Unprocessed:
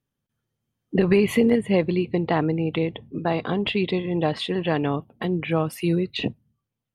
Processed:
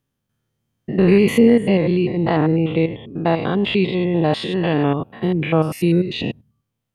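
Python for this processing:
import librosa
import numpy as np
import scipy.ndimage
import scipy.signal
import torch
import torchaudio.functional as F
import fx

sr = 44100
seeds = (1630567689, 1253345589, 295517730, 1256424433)

y = fx.spec_steps(x, sr, hold_ms=100)
y = y * librosa.db_to_amplitude(7.0)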